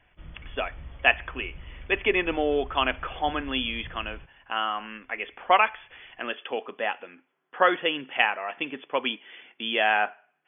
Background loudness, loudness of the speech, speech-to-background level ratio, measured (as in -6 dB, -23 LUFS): -46.0 LUFS, -27.0 LUFS, 19.0 dB